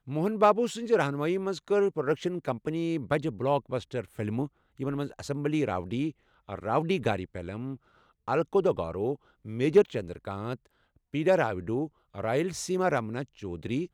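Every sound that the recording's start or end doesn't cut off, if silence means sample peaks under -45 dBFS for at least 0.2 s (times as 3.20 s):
4.79–6.11 s
6.49–7.77 s
8.28–9.15 s
9.45–10.65 s
11.14–11.87 s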